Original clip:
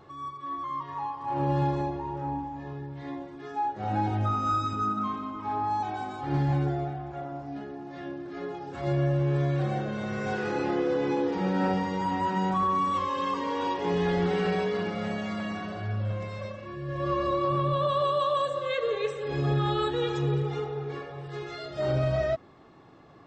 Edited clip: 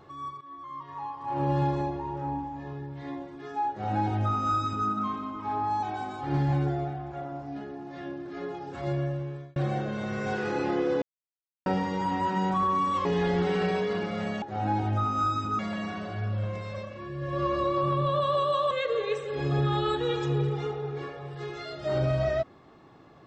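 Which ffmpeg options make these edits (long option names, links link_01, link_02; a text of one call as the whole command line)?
ffmpeg -i in.wav -filter_complex "[0:a]asplit=9[link_01][link_02][link_03][link_04][link_05][link_06][link_07][link_08][link_09];[link_01]atrim=end=0.41,asetpts=PTS-STARTPTS,afade=type=out:start_time=0.406:duration=0.004:curve=hsin:silence=0.237137[link_10];[link_02]atrim=start=0.41:end=9.56,asetpts=PTS-STARTPTS,afade=type=in:duration=1.06:silence=0.237137,afade=type=out:start_time=8.3:duration=0.85[link_11];[link_03]atrim=start=9.56:end=11.02,asetpts=PTS-STARTPTS,afade=type=in:duration=0.004:curve=hsin,afade=type=out:start_time=1.456:duration=0.004:curve=hsin[link_12];[link_04]atrim=start=11.02:end=11.66,asetpts=PTS-STARTPTS,volume=0[link_13];[link_05]atrim=start=11.66:end=13.052,asetpts=PTS-STARTPTS,afade=type=in:duration=0.004:curve=hsin[link_14];[link_06]atrim=start=13.888:end=15.262[link_15];[link_07]atrim=start=3.698:end=4.872[link_16];[link_08]atrim=start=15.258:end=18.382[link_17];[link_09]atrim=start=18.638[link_18];[link_10][link_11][link_12][link_13][link_14]concat=n=5:v=0:a=1[link_19];[link_19][link_15]acrossfade=duration=0.004:curve1=hsin:curve2=hsin[link_20];[link_20][link_16]acrossfade=duration=0.004:curve1=hsin:curve2=hsin[link_21];[link_21][link_17]acrossfade=duration=0.004:curve1=hsin:curve2=hsin[link_22];[link_22][link_18]acrossfade=duration=0.004:curve1=hsin:curve2=hsin" out.wav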